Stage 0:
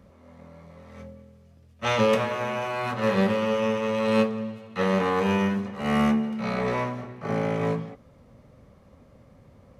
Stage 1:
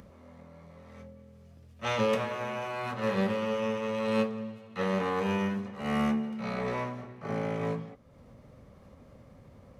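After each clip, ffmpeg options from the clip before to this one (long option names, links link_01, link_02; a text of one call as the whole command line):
ffmpeg -i in.wav -af "acompressor=mode=upward:threshold=-39dB:ratio=2.5,volume=-6dB" out.wav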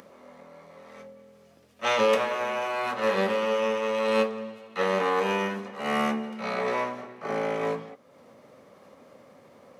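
ffmpeg -i in.wav -af "highpass=340,volume=6.5dB" out.wav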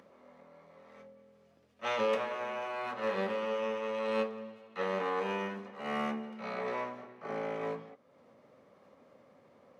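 ffmpeg -i in.wav -af "highshelf=frequency=6300:gain=-12,volume=-8dB" out.wav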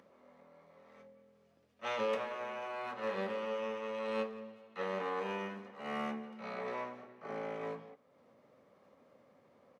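ffmpeg -i in.wav -filter_complex "[0:a]asplit=2[link_01][link_02];[link_02]adelay=170,highpass=300,lowpass=3400,asoftclip=type=hard:threshold=-28dB,volume=-20dB[link_03];[link_01][link_03]amix=inputs=2:normalize=0,volume=-4dB" out.wav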